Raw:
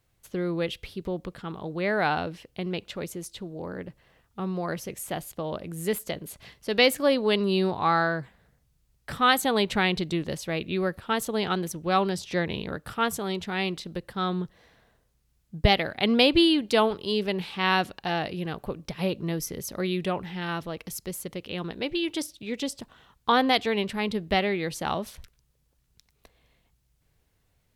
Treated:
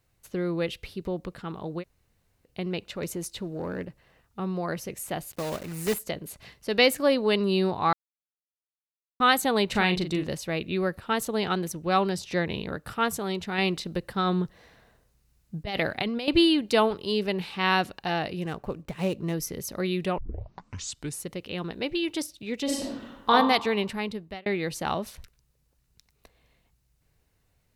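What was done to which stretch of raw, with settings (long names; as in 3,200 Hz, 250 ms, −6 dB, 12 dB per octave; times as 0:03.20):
0:01.81–0:02.47: fill with room tone, crossfade 0.06 s
0:03.02–0:03.85: leveller curve on the samples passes 1
0:05.31–0:05.96: one scale factor per block 3 bits
0:07.93–0:09.20: silence
0:09.70–0:10.28: double-tracking delay 39 ms −8 dB
0:13.58–0:16.28: compressor whose output falls as the input rises −27 dBFS
0:18.41–0:19.34: running median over 9 samples
0:20.18: tape start 1.11 s
0:22.64–0:23.30: thrown reverb, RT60 1 s, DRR −6 dB
0:23.86–0:24.46: fade out
whole clip: notch filter 3,300 Hz, Q 15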